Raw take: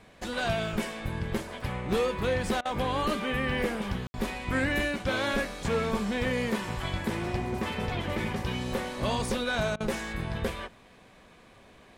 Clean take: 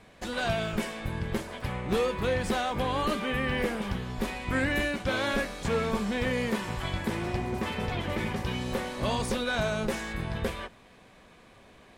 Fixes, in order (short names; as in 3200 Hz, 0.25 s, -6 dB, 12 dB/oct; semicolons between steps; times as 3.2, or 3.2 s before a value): clip repair -19 dBFS; room tone fill 4.07–4.14; interpolate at 2.61/4.09/9.76, 42 ms